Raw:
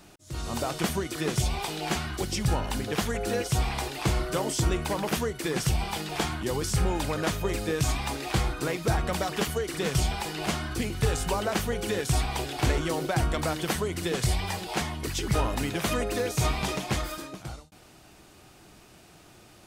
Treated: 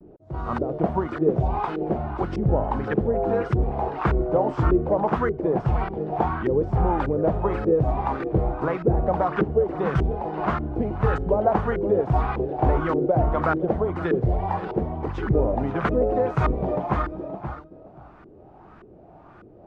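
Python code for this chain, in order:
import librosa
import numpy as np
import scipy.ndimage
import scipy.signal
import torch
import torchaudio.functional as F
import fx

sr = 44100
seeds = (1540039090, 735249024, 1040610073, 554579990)

y = fx.filter_lfo_lowpass(x, sr, shape='saw_up', hz=1.7, low_hz=360.0, high_hz=1500.0, q=2.6)
y = fx.vibrato(y, sr, rate_hz=0.82, depth_cents=55.0)
y = y + 10.0 ** (-14.0 / 20.0) * np.pad(y, (int(524 * sr / 1000.0), 0))[:len(y)]
y = y * librosa.db_to_amplitude(3.5)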